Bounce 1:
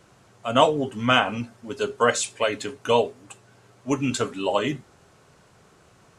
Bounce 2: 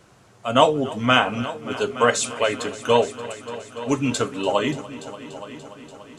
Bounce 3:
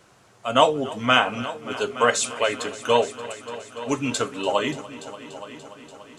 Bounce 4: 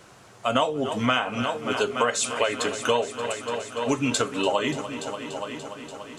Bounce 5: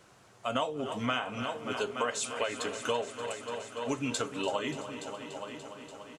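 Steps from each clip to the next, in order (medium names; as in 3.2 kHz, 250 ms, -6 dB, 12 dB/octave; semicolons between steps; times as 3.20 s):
multi-head delay 290 ms, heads all three, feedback 55%, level -19 dB; trim +2 dB
bass shelf 320 Hz -6.5 dB
compression 5:1, threshold -25 dBFS, peak gain reduction 13.5 dB; trim +5 dB
feedback delay 334 ms, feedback 55%, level -15.5 dB; trim -8.5 dB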